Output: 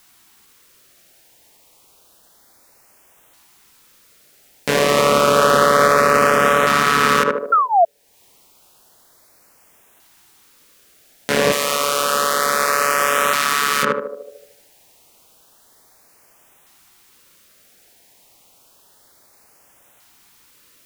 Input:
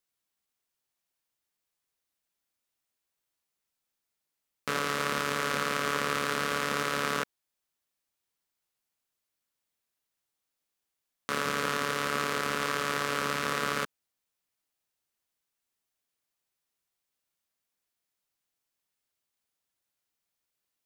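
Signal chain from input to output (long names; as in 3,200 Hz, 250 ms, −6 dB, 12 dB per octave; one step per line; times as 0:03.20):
leveller curve on the samples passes 1
feedback echo with a band-pass in the loop 75 ms, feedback 48%, band-pass 490 Hz, level −3 dB
0:07.52–0:07.85: sound drawn into the spectrogram fall 650–1,400 Hz −33 dBFS
downward compressor 2 to 1, threshold −56 dBFS, peak gain reduction 18.5 dB
parametric band 760 Hz +4 dB 1.6 octaves
auto-filter notch saw up 0.3 Hz 470–4,900 Hz
0:11.52–0:13.83: spectral tilt +3 dB per octave
boost into a limiter +34.5 dB
level −1 dB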